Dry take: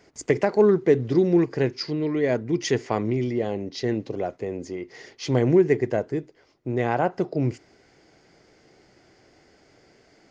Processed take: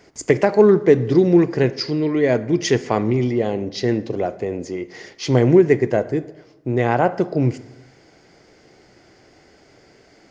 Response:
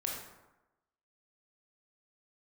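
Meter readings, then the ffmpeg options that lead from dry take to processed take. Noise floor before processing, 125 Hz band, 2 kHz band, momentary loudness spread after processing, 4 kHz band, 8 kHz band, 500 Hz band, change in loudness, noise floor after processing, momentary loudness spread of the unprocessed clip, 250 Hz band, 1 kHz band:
-59 dBFS, +6.0 dB, +5.5 dB, 13 LU, +5.5 dB, n/a, +5.5 dB, +5.5 dB, -53 dBFS, 13 LU, +5.5 dB, +5.5 dB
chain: -filter_complex "[0:a]asplit=2[a][b];[1:a]atrim=start_sample=2205[c];[b][c]afir=irnorm=-1:irlink=0,volume=-13.5dB[d];[a][d]amix=inputs=2:normalize=0,volume=4dB"

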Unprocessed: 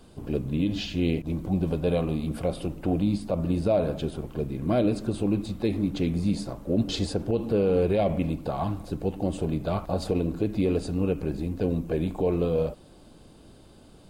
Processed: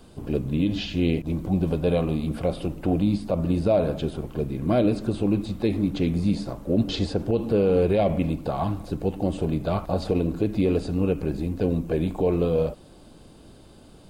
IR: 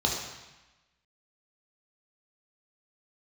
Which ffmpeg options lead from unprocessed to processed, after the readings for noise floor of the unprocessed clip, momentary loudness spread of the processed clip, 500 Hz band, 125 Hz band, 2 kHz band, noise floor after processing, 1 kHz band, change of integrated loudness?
-52 dBFS, 7 LU, +2.5 dB, +2.5 dB, +2.5 dB, -49 dBFS, +2.5 dB, +2.5 dB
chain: -filter_complex "[0:a]acrossover=split=5200[a][b];[b]acompressor=threshold=-53dB:ratio=4:attack=1:release=60[c];[a][c]amix=inputs=2:normalize=0,volume=2.5dB"

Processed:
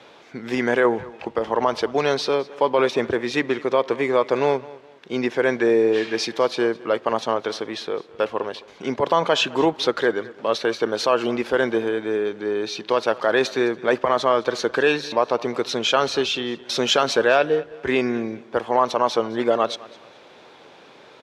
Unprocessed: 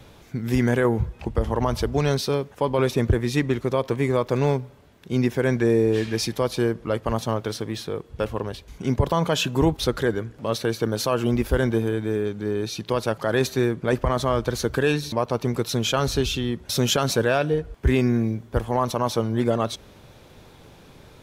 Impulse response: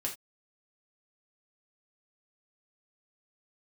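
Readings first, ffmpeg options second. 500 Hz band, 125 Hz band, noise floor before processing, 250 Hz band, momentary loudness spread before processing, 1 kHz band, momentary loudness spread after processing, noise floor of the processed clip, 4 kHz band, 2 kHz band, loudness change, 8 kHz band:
+3.5 dB, -14.5 dB, -50 dBFS, -2.0 dB, 7 LU, +5.5 dB, 9 LU, -48 dBFS, +3.5 dB, +5.5 dB, +2.0 dB, -2.5 dB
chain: -filter_complex "[0:a]highpass=400,lowpass=4.4k,asplit=2[a][b];[b]aecho=0:1:211|422:0.0944|0.0283[c];[a][c]amix=inputs=2:normalize=0,volume=5.5dB"

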